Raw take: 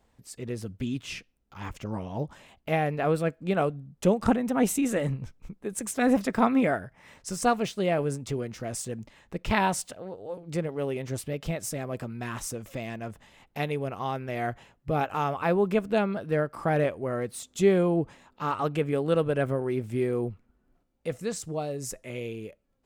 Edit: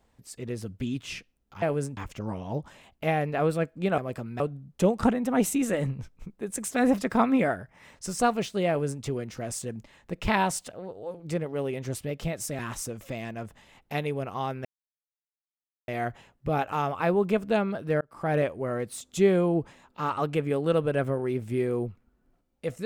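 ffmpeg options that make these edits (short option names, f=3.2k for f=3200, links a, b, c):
-filter_complex "[0:a]asplit=8[a][b][c][d][e][f][g][h];[a]atrim=end=1.622[i];[b]atrim=start=7.908:end=8.262[j];[c]atrim=start=1.618:end=3.632[k];[d]atrim=start=11.818:end=12.242[l];[e]atrim=start=3.628:end=11.822[m];[f]atrim=start=12.238:end=14.3,asetpts=PTS-STARTPTS,afade=t=out:st=2.058:d=0.004:c=hsin,apad=pad_dur=1.23[n];[g]atrim=start=14.3:end=16.43,asetpts=PTS-STARTPTS,afade=t=in:d=0.004:c=hsin,afade=t=out:st=2.126:d=0.004:c=hsin[o];[h]atrim=start=16.43,asetpts=PTS-STARTPTS,afade=t=in:d=0.35[p];[i][j]acrossfade=d=0.004:c1=hsin:c2=hsin[q];[q][k]acrossfade=d=0.004:c1=hsin:c2=hsin[r];[r][l]acrossfade=d=0.004:c1=hsin:c2=hsin[s];[s][m]acrossfade=d=0.004:c1=hsin:c2=hsin[t];[n][o][p]concat=n=3:v=0:a=1[u];[t][u]acrossfade=d=0.004:c1=hsin:c2=hsin"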